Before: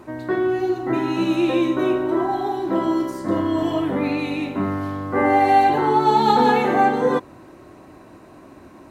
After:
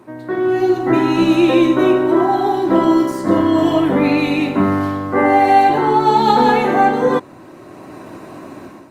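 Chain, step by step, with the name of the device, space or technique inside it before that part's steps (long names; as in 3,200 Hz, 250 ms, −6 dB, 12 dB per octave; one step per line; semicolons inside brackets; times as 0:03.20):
video call (high-pass filter 100 Hz 24 dB per octave; automatic gain control gain up to 12 dB; level −1 dB; Opus 32 kbit/s 48,000 Hz)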